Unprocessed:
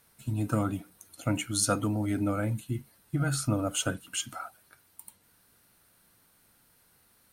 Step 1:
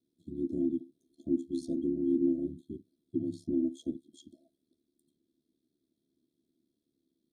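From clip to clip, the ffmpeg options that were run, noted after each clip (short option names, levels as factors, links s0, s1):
-filter_complex "[0:a]asplit=3[s0][s1][s2];[s0]bandpass=f=300:t=q:w=8,volume=1[s3];[s1]bandpass=f=870:t=q:w=8,volume=0.501[s4];[s2]bandpass=f=2240:t=q:w=8,volume=0.355[s5];[s3][s4][s5]amix=inputs=3:normalize=0,aeval=exprs='val(0)*sin(2*PI*36*n/s)':c=same,afftfilt=real='re*(1-between(b*sr/4096,680,3200))':imag='im*(1-between(b*sr/4096,680,3200))':win_size=4096:overlap=0.75,volume=2.37"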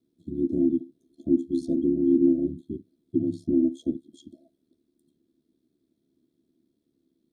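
-af "highshelf=f=2400:g=-8,volume=2.51"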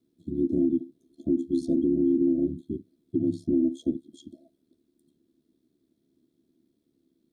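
-af "alimiter=limit=0.141:level=0:latency=1:release=70,volume=1.19"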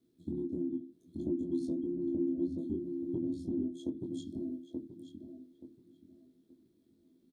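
-filter_complex "[0:a]acompressor=threshold=0.0251:ratio=10,asplit=2[s0][s1];[s1]adelay=23,volume=0.631[s2];[s0][s2]amix=inputs=2:normalize=0,asplit=2[s3][s4];[s4]adelay=879,lowpass=f=1800:p=1,volume=0.668,asplit=2[s5][s6];[s6]adelay=879,lowpass=f=1800:p=1,volume=0.27,asplit=2[s7][s8];[s8]adelay=879,lowpass=f=1800:p=1,volume=0.27,asplit=2[s9][s10];[s10]adelay=879,lowpass=f=1800:p=1,volume=0.27[s11];[s5][s7][s9][s11]amix=inputs=4:normalize=0[s12];[s3][s12]amix=inputs=2:normalize=0,volume=0.794"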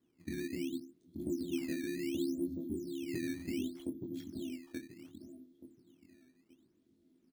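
-af "acrusher=samples=12:mix=1:aa=0.000001:lfo=1:lforange=19.2:lforate=0.68,volume=0.708"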